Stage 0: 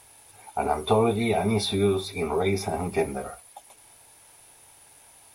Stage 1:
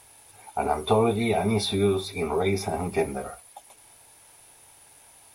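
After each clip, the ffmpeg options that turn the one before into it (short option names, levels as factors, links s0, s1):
-af anull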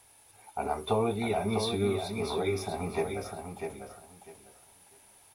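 -filter_complex "[0:a]aecho=1:1:649|1298|1947:0.501|0.1|0.02,acrossover=split=560|4000[s0][s1][s2];[s2]acrusher=bits=6:mode=log:mix=0:aa=0.000001[s3];[s0][s1][s3]amix=inputs=3:normalize=0,volume=0.473"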